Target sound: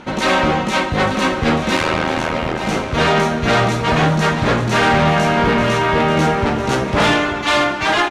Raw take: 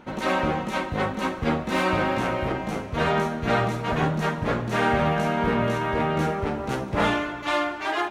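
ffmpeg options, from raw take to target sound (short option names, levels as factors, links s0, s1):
-filter_complex "[0:a]lowpass=5500,aemphasis=mode=production:type=75kf,aeval=exprs='0.398*(cos(1*acos(clip(val(0)/0.398,-1,1)))-cos(1*PI/2))+0.126*(cos(5*acos(clip(val(0)/0.398,-1,1)))-cos(5*PI/2))':c=same,asplit=3[s0][s1][s2];[s0]afade=t=out:st=1.75:d=0.02[s3];[s1]tremolo=f=80:d=0.947,afade=t=in:st=1.75:d=0.02,afade=t=out:st=2.61:d=0.02[s4];[s2]afade=t=in:st=2.61:d=0.02[s5];[s3][s4][s5]amix=inputs=3:normalize=0,aecho=1:1:887:0.299,volume=1.19"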